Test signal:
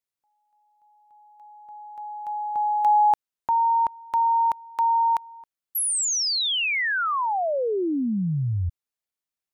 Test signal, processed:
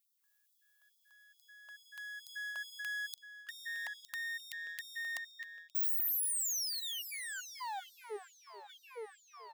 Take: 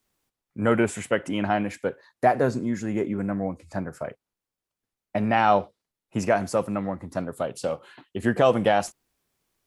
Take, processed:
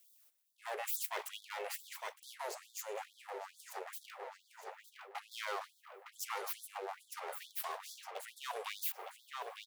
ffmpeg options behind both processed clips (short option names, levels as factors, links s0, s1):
-filter_complex "[0:a]highpass=f=62:p=1,equalizer=f=1000:w=1.2:g=-13.5,bandreject=f=2000:w=13,asplit=2[s0][s1];[s1]alimiter=limit=0.0708:level=0:latency=1,volume=0.794[s2];[s0][s2]amix=inputs=2:normalize=0,aeval=exprs='abs(val(0))':c=same,highshelf=f=9800:g=11.5,asplit=2[s3][s4];[s4]adelay=911,lowpass=f=4500:p=1,volume=0.251,asplit=2[s5][s6];[s6]adelay=911,lowpass=f=4500:p=1,volume=0.46,asplit=2[s7][s8];[s8]adelay=911,lowpass=f=4500:p=1,volume=0.46,asplit=2[s9][s10];[s10]adelay=911,lowpass=f=4500:p=1,volume=0.46,asplit=2[s11][s12];[s12]adelay=911,lowpass=f=4500:p=1,volume=0.46[s13];[s3][s5][s7][s9][s11][s13]amix=inputs=6:normalize=0,areverse,acompressor=threshold=0.0178:ratio=5:attack=10:release=124:knee=1:detection=rms,areverse,afftfilt=real='re*gte(b*sr/1024,370*pow(3400/370,0.5+0.5*sin(2*PI*2.3*pts/sr)))':imag='im*gte(b*sr/1024,370*pow(3400/370,0.5+0.5*sin(2*PI*2.3*pts/sr)))':win_size=1024:overlap=0.75,volume=1.41"